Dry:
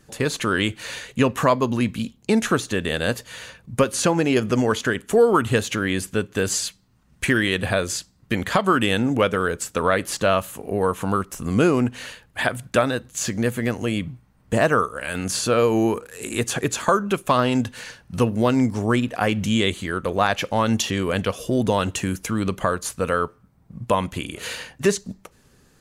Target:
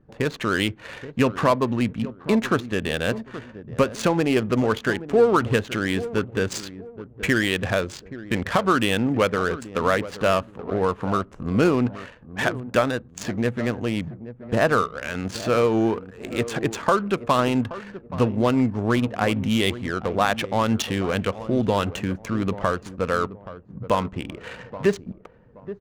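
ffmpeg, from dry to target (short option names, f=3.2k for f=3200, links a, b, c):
-filter_complex "[0:a]asettb=1/sr,asplit=3[a][b][c];[a]atrim=end=23.994[d];[b]atrim=start=23.99:end=24.91,asetpts=PTS-STARTPTS,afade=t=in:d=0.004:c=qsin,afade=t=out:st=0.916:d=0.004:c=qsin,aemphasis=mode=reproduction:type=50fm[e];[c]atrim=start=24.906[f];[d][e]acrossfade=d=0.004:c1=hsin:c2=qsin[g];[g][f]acrossfade=d=0.004:c1=qsin:c2=hsin,asplit=2[h][i];[i]adelay=826,lowpass=f=1.2k:p=1,volume=-13.5dB,asplit=2[j][k];[k]adelay=826,lowpass=f=1.2k:p=1,volume=0.33,asplit=2[l][m];[m]adelay=826,lowpass=f=1.2k:p=1,volume=0.33[n];[h][j][l][n]amix=inputs=4:normalize=0,adynamicsmooth=sensitivity=3:basefreq=870,volume=-1dB"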